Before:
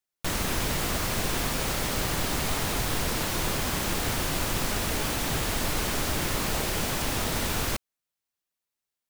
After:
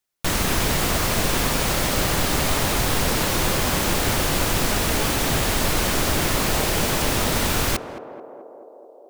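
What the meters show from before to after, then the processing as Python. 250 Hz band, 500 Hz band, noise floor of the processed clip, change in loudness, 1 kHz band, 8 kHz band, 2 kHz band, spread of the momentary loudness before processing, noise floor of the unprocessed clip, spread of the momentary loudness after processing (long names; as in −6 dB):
+7.0 dB, +8.0 dB, −46 dBFS, +6.5 dB, +7.0 dB, +6.5 dB, +6.5 dB, 0 LU, below −85 dBFS, 2 LU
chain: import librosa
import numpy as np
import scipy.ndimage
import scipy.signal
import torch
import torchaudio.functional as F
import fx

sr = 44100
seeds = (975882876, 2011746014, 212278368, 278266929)

y = fx.echo_banded(x, sr, ms=217, feedback_pct=82, hz=530.0, wet_db=-8.5)
y = F.gain(torch.from_numpy(y), 6.5).numpy()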